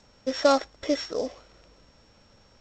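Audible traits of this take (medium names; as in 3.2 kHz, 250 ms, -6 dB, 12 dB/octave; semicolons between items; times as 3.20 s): a buzz of ramps at a fixed pitch in blocks of 8 samples; G.722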